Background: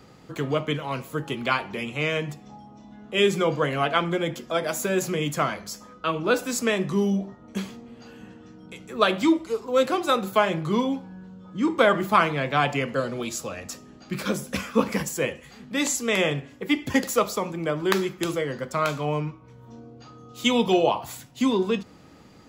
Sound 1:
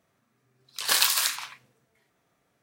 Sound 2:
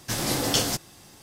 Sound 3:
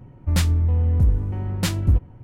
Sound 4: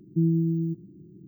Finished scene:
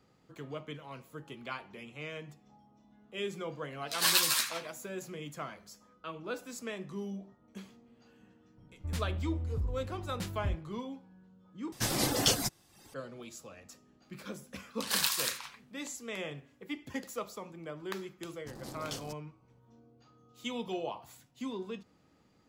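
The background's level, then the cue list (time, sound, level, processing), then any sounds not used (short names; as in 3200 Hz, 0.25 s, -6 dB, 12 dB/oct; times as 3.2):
background -16.5 dB
3.13 add 1 -1 dB + ensemble effect
8.57 add 3 -16.5 dB
11.72 replace with 2 -2.5 dB + reverb removal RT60 0.75 s
14.02 add 1 -8 dB
18.37 add 2 -17 dB + Wiener smoothing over 25 samples
not used: 4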